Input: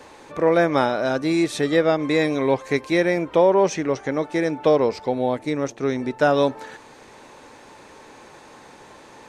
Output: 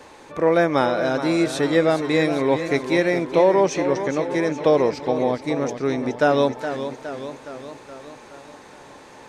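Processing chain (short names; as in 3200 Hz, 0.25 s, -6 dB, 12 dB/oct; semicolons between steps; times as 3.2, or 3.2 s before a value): warbling echo 0.418 s, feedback 59%, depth 84 cents, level -10 dB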